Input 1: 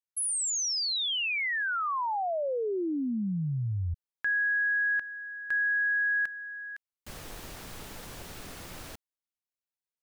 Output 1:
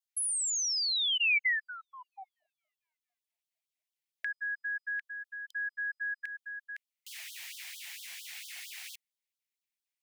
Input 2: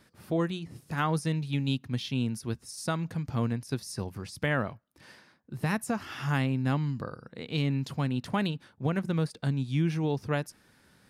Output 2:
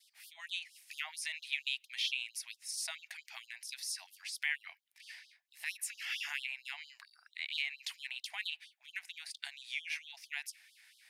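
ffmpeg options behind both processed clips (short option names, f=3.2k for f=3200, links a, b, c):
-filter_complex "[0:a]adynamicequalizer=threshold=0.00562:dfrequency=2400:dqfactor=2.3:tfrequency=2400:tqfactor=2.3:attack=5:release=100:ratio=0.375:range=2:mode=boostabove:tftype=bell,acrossover=split=160[a][b];[b]acompressor=threshold=-32dB:ratio=5:attack=7.5:release=143:knee=2.83:detection=peak[c];[a][c]amix=inputs=2:normalize=0,highshelf=f=1.6k:t=q:w=3:g=9,afftfilt=real='re*gte(b*sr/1024,610*pow(3100/610,0.5+0.5*sin(2*PI*4.4*pts/sr)))':imag='im*gte(b*sr/1024,610*pow(3100/610,0.5+0.5*sin(2*PI*4.4*pts/sr)))':win_size=1024:overlap=0.75,volume=-7.5dB"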